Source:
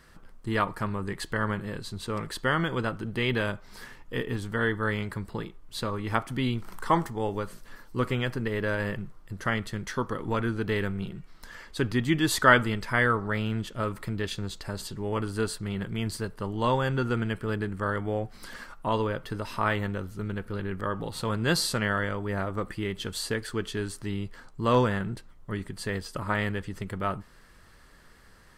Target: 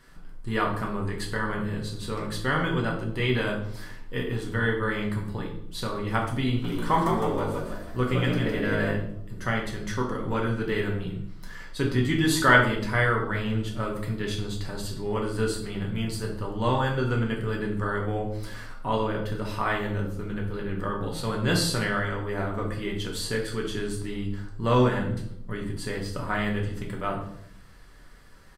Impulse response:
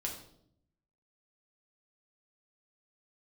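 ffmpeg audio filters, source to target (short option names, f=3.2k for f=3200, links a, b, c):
-filter_complex "[0:a]asplit=3[a][b][c];[a]afade=t=out:st=6.63:d=0.02[d];[b]asplit=7[e][f][g][h][i][j][k];[f]adelay=159,afreqshift=52,volume=-4.5dB[l];[g]adelay=318,afreqshift=104,volume=-11.4dB[m];[h]adelay=477,afreqshift=156,volume=-18.4dB[n];[i]adelay=636,afreqshift=208,volume=-25.3dB[o];[j]adelay=795,afreqshift=260,volume=-32.2dB[p];[k]adelay=954,afreqshift=312,volume=-39.2dB[q];[e][l][m][n][o][p][q]amix=inputs=7:normalize=0,afade=t=in:st=6.63:d=0.02,afade=t=out:st=8.9:d=0.02[r];[c]afade=t=in:st=8.9:d=0.02[s];[d][r][s]amix=inputs=3:normalize=0[t];[1:a]atrim=start_sample=2205[u];[t][u]afir=irnorm=-1:irlink=0"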